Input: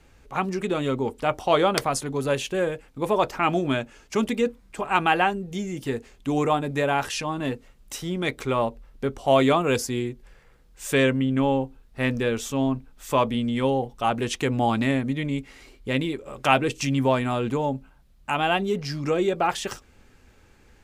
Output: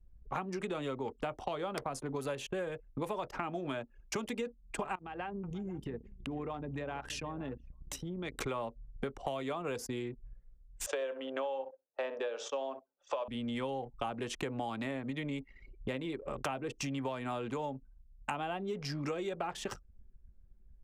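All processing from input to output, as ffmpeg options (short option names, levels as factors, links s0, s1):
-filter_complex "[0:a]asettb=1/sr,asplit=3[s0][s1][s2];[s0]atrim=end=4.954[s3];[s1]atrim=start=4.95:end=8.34,asetpts=PTS-STARTPTS,afade=t=in:d=0.004:c=qsin,afade=t=out:st=3.386:d=0.004:c=qsin,acompressor=threshold=0.01:ratio=4:attack=3.2:release=140:knee=1:detection=peak,aeval=exprs='val(0)+0.00178*(sin(2*PI*60*n/s)+sin(2*PI*2*60*n/s)/2+sin(2*PI*3*60*n/s)/3+sin(2*PI*4*60*n/s)/4+sin(2*PI*5*60*n/s)/5)':c=same,aecho=1:1:486:0.188,atrim=end_sample=149499[s4];[s2]atrim=start=8.336[s5];[s3][s4]acrossfade=d=0.004:c1=hsin:c2=qsin[s6];[s6][s5]acrossfade=d=0.004:c1=qsin:c2=hsin,asettb=1/sr,asplit=3[s7][s8][s9];[s7]atrim=end=10.864[s10];[s8]atrim=start=10.86:end=13.28,asetpts=PTS-STARTPTS,afade=t=in:d=0.004:c=qsin,afade=t=out:st=2.416:d=0.004:c=qsin,highpass=f=440:w=0.5412,highpass=f=440:w=1.3066,equalizer=f=580:t=q:w=4:g=10,equalizer=f=820:t=q:w=4:g=3,equalizer=f=2100:t=q:w=4:g=-7,equalizer=f=4200:t=q:w=4:g=-3,lowpass=f=5900:w=0.5412,lowpass=f=5900:w=1.3066,asplit=2[s11][s12];[s12]adelay=67,lowpass=f=2100:p=1,volume=0.224,asplit=2[s13][s14];[s14]adelay=67,lowpass=f=2100:p=1,volume=0.24,asplit=2[s15][s16];[s16]adelay=67,lowpass=f=2100:p=1,volume=0.24[s17];[s11][s13][s15][s17]amix=inputs=4:normalize=0,atrim=end_sample=106722[s18];[s9]atrim=start=13.276[s19];[s10][s18]acrossfade=d=0.004:c1=hsin:c2=qsin[s20];[s20][s19]acrossfade=d=0.004:c1=qsin:c2=hsin,acrossover=split=190|470|1300[s21][s22][s23][s24];[s21]acompressor=threshold=0.00891:ratio=4[s25];[s22]acompressor=threshold=0.0178:ratio=4[s26];[s23]acompressor=threshold=0.0447:ratio=4[s27];[s24]acompressor=threshold=0.0141:ratio=4[s28];[s25][s26][s27][s28]amix=inputs=4:normalize=0,anlmdn=0.251,acompressor=threshold=0.0141:ratio=6,volume=1.33"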